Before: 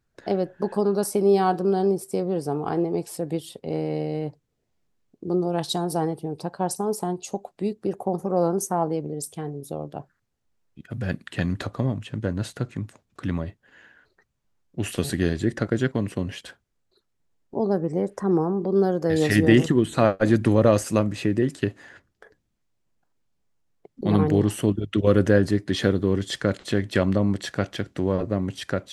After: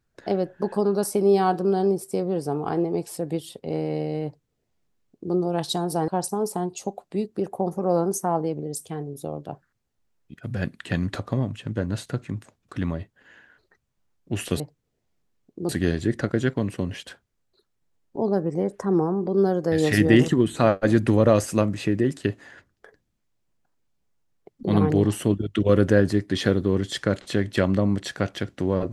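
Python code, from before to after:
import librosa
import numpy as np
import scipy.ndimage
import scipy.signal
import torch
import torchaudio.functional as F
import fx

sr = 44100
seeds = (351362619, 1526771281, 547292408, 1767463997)

y = fx.edit(x, sr, fx.duplicate(start_s=4.25, length_s=1.09, to_s=15.07),
    fx.cut(start_s=6.08, length_s=0.47), tone=tone)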